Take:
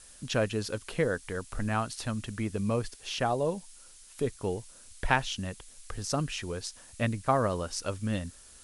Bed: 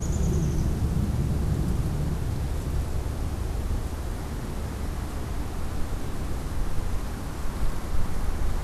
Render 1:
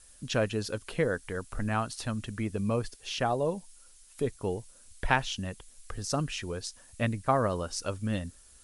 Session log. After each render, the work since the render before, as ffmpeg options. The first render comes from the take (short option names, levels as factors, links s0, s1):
-af "afftdn=nr=6:nf=-53"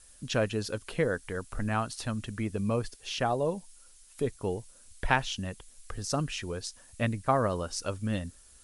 -af anull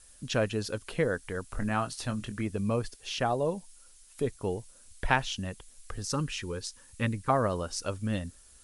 -filter_complex "[0:a]asettb=1/sr,asplit=3[s0][s1][s2];[s0]atrim=end=1.474[s3];[s1]atrim=start=1.47:end=2.46,asetpts=PTS-STARTPTS,afade=t=in:d=0.004:c=qsin,afade=t=out:st=0.986:d=0.004:c=qsin,asplit=2[s4][s5];[s5]adelay=24,volume=0.335[s6];[s4][s6]amix=inputs=2:normalize=0,atrim=end_sample=43659[s7];[s2]atrim=start=2.456[s8];[s3][s7]acrossfade=d=0.004:c1=hsin:c2=qsin[s9];[s9][s8]acrossfade=d=0.004:c1=qsin:c2=hsin,asettb=1/sr,asplit=3[s10][s11][s12];[s10]atrim=end=6.124[s13];[s11]atrim=start=6.12:end=7.3,asetpts=PTS-STARTPTS,afade=t=in:d=0.004:c=qsin,afade=t=out:st=1.176:d=0.004:c=qsin,asuperstop=centerf=670:order=8:qfactor=3[s14];[s12]atrim=start=7.296[s15];[s13][s14]acrossfade=d=0.004:c1=hsin:c2=qsin[s16];[s16][s15]acrossfade=d=0.004:c1=qsin:c2=hsin"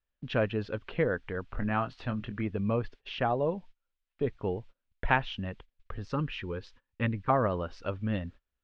-af "agate=range=0.0562:threshold=0.00501:ratio=16:detection=peak,lowpass=f=3100:w=0.5412,lowpass=f=3100:w=1.3066"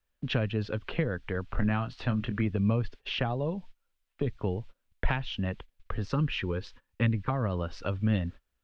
-filter_complex "[0:a]asplit=2[s0][s1];[s1]alimiter=limit=0.106:level=0:latency=1:release=479,volume=1.06[s2];[s0][s2]amix=inputs=2:normalize=0,acrossover=split=200|3000[s3][s4][s5];[s4]acompressor=threshold=0.0282:ratio=6[s6];[s3][s6][s5]amix=inputs=3:normalize=0"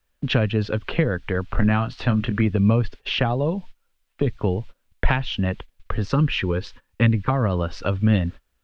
-af "volume=2.66"